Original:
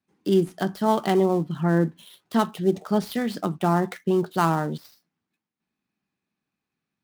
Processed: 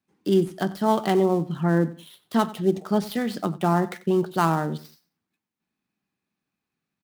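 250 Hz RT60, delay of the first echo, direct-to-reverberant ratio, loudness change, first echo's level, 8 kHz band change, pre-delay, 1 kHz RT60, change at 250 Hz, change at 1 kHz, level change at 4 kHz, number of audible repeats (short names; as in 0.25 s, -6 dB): none, 92 ms, none, 0.0 dB, -18.5 dB, 0.0 dB, none, none, 0.0 dB, 0.0 dB, 0.0 dB, 2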